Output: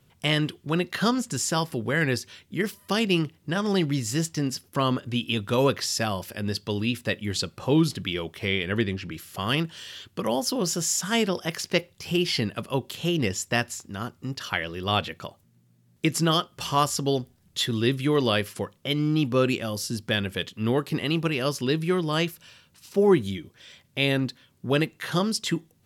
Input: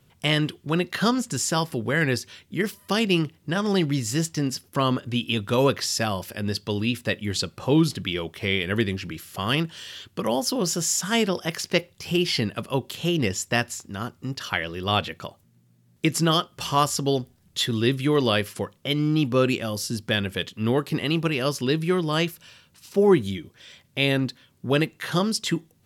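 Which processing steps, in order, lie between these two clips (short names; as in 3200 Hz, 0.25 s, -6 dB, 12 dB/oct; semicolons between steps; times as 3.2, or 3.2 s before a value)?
8.49–9.11 high shelf 11000 Hz -> 7100 Hz -11.5 dB; gain -1.5 dB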